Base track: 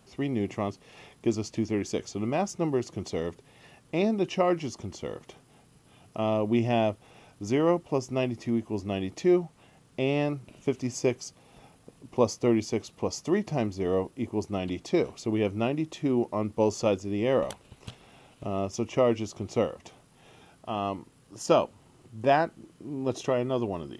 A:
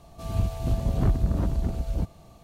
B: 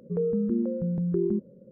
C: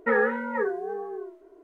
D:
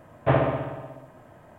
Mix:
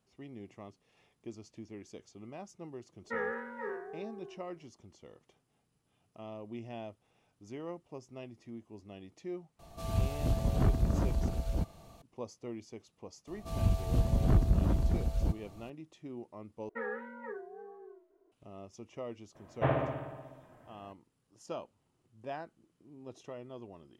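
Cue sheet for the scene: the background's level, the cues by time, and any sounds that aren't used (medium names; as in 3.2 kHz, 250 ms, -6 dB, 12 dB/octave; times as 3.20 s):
base track -18.5 dB
3.04 s: add C -14.5 dB + spectral sustain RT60 0.75 s
9.59 s: add A -1.5 dB + bass shelf 330 Hz -4 dB
13.27 s: add A -3 dB
16.69 s: replace with C -16 dB
19.35 s: add D -8.5 dB
not used: B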